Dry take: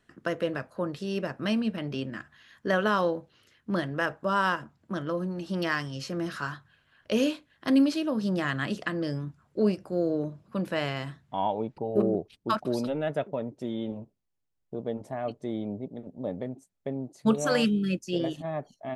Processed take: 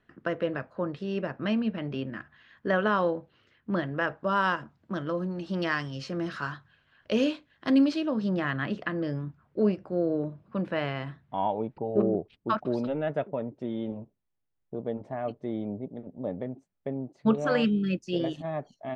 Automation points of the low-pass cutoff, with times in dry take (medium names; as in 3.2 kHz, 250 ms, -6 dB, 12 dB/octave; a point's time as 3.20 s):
3.91 s 2.9 kHz
4.57 s 4.8 kHz
7.94 s 4.8 kHz
8.50 s 2.7 kHz
17.55 s 2.7 kHz
18.34 s 5.6 kHz